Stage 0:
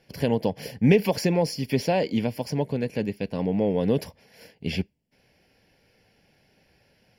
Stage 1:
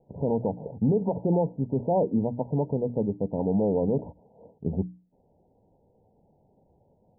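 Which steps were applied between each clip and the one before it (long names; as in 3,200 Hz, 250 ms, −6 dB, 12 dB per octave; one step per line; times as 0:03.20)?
Chebyshev low-pass filter 970 Hz, order 10
mains-hum notches 60/120/180/240/300 Hz
brickwall limiter −17.5 dBFS, peak gain reduction 9.5 dB
level +2 dB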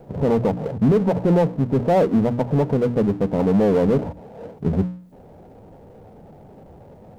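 power curve on the samples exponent 0.7
level +5.5 dB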